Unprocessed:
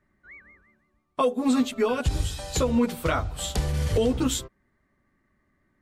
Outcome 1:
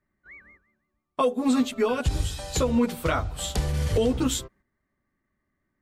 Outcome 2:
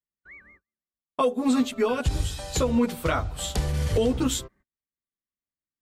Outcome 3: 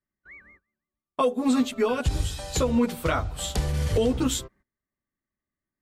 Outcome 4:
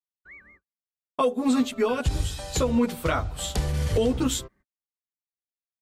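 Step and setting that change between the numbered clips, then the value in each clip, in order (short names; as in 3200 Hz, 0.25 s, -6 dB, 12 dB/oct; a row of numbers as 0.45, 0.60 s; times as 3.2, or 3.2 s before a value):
gate, range: -8, -34, -21, -49 dB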